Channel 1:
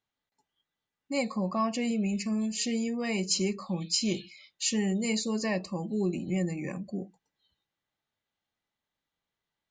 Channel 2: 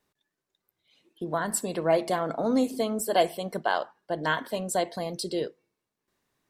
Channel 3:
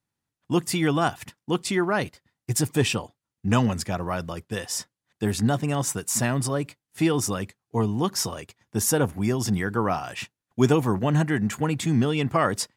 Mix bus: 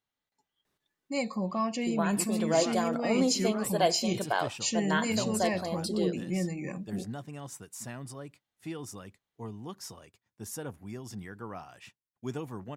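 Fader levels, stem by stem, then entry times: -1.5, -3.0, -17.0 dB; 0.00, 0.65, 1.65 s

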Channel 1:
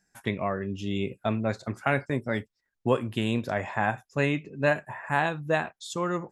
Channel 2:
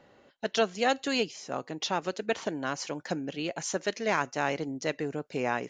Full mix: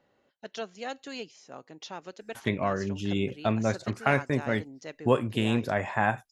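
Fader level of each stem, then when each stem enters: +1.0, -10.5 dB; 2.20, 0.00 s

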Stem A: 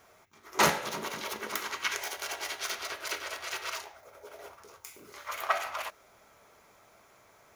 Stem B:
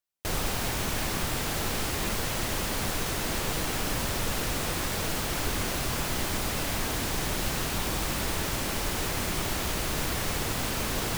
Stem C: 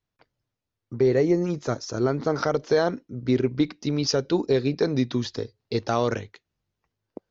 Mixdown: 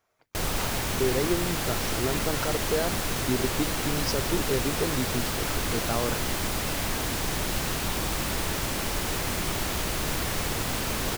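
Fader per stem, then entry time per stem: -15.0, +1.0, -6.5 dB; 0.00, 0.10, 0.00 s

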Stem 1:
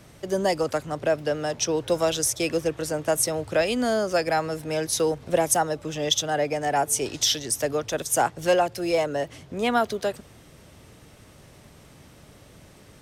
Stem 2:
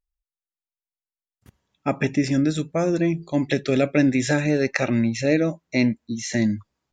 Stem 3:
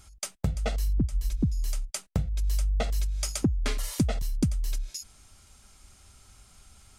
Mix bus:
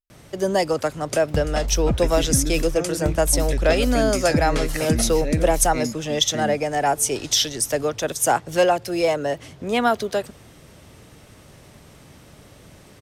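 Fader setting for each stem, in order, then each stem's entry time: +3.0, -8.0, +3.0 dB; 0.10, 0.00, 0.90 s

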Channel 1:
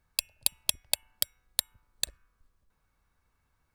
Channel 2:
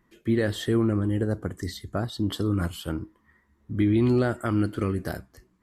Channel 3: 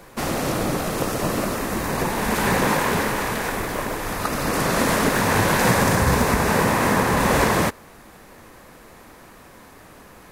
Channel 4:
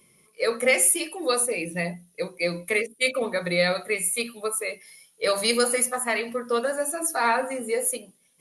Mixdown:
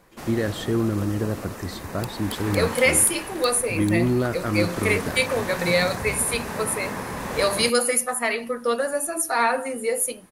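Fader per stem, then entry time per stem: -11.5, 0.0, -12.0, +1.5 dB; 1.85, 0.00, 0.00, 2.15 s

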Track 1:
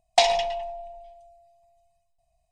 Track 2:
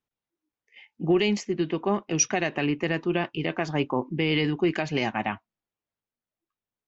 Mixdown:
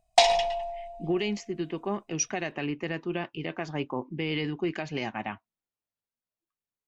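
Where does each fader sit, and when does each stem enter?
-0.5, -6.0 dB; 0.00, 0.00 s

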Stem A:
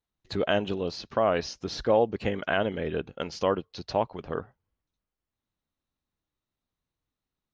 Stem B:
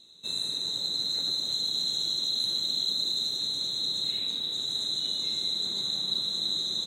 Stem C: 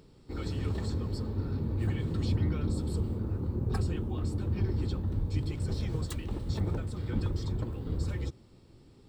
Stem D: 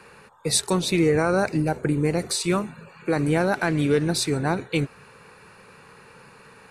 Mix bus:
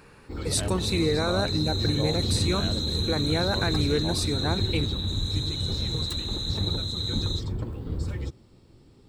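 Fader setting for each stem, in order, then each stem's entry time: -12.5, -3.0, +2.0, -5.5 dB; 0.10, 0.55, 0.00, 0.00 s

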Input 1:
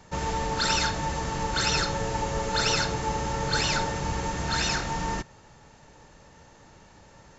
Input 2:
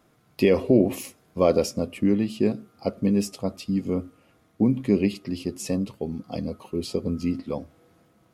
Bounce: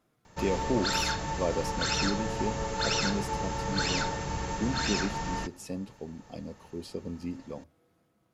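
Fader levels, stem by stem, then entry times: -4.0, -10.5 dB; 0.25, 0.00 s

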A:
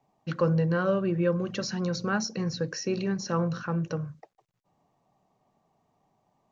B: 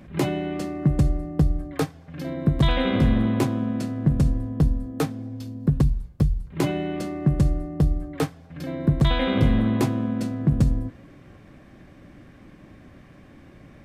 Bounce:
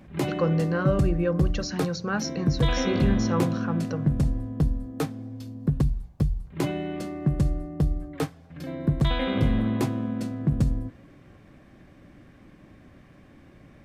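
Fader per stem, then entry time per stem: 0.0, -3.5 dB; 0.00, 0.00 s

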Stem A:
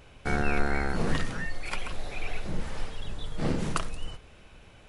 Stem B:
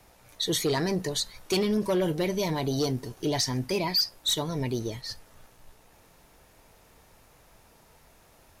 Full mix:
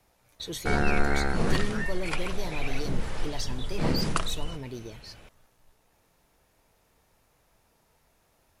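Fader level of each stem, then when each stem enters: +2.0, -9.0 dB; 0.40, 0.00 s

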